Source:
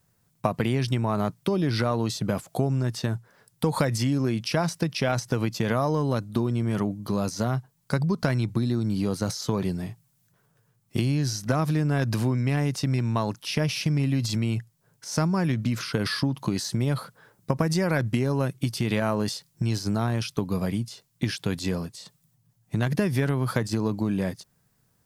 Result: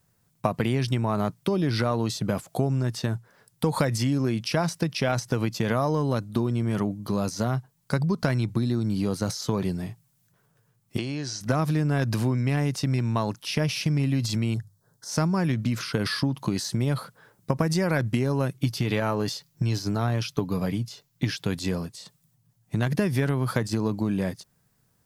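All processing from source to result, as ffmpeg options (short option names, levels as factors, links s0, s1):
-filter_complex "[0:a]asettb=1/sr,asplit=3[s0][s1][s2];[s0]atrim=end=10.984[s3];[s1]atrim=start=10.98:end=11.41,asetpts=PTS-STARTPTS,afade=t=in:d=0.004:c=qsin,afade=t=out:st=0.426:d=0.004:c=qsin,lowpass=f=8100:w=0.5412,lowpass=f=8100:w=1.3066,bass=f=250:g=-11,treble=f=4000:g=-2[s4];[s2]atrim=start=11.406[s5];[s3][s4]acrossfade=d=0.004:c1=hsin:c2=qsin[s6];[s6][s5]acrossfade=d=0.004:c1=qsin:c2=hsin,asettb=1/sr,asplit=3[s7][s8][s9];[s7]atrim=end=14.544[s10];[s8]atrim=start=14.54:end=15.09,asetpts=PTS-STARTPTS,afade=t=in:d=0.004:c=qsin,afade=t=out:st=0.546:d=0.004:c=qsin,asuperstop=centerf=2500:order=4:qfactor=1.4,bandreject=f=50:t=h:w=6,bandreject=f=100:t=h:w=6,bandreject=f=150:t=h:w=6[s11];[s9]atrim=start=15.086[s12];[s10][s11]acrossfade=d=0.004:c1=hsin:c2=qsin[s13];[s13][s12]acrossfade=d=0.004:c1=qsin:c2=hsin,asettb=1/sr,asplit=3[s14][s15][s16];[s14]atrim=end=18.584[s17];[s15]atrim=start=18.58:end=21.44,asetpts=PTS-STARTPTS,afade=t=in:d=0.004:c=qsin,afade=t=out:st=2.856:d=0.004:c=qsin,equalizer=f=9000:w=2.9:g=-7.5,aecho=1:1:6.9:0.32,atrim=end_sample=126126[s18];[s16]atrim=start=21.436[s19];[s17][s18]acrossfade=d=0.004:c1=hsin:c2=qsin[s20];[s20][s19]acrossfade=d=0.004:c1=qsin:c2=hsin"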